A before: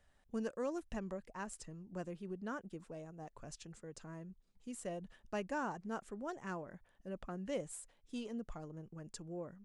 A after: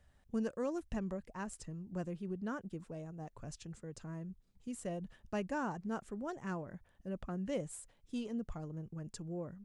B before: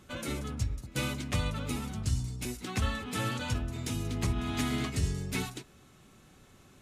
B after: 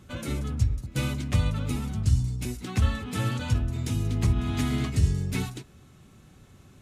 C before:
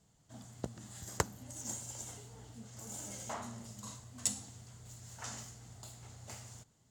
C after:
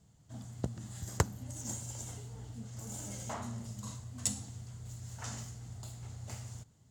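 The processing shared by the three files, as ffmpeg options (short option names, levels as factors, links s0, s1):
-af "equalizer=f=88:t=o:w=2.6:g=9"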